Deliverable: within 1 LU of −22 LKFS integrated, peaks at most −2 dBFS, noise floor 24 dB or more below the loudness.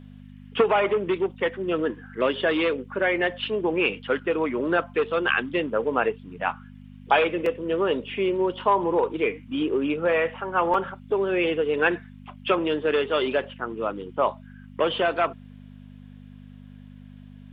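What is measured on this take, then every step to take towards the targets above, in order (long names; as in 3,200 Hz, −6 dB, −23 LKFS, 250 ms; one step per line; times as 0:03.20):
number of dropouts 2; longest dropout 2.7 ms; mains hum 50 Hz; hum harmonics up to 250 Hz; level of the hum −42 dBFS; integrated loudness −25.0 LKFS; sample peak −6.5 dBFS; target loudness −22.0 LKFS
→ repair the gap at 0:07.46/0:10.74, 2.7 ms
hum removal 50 Hz, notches 5
level +3 dB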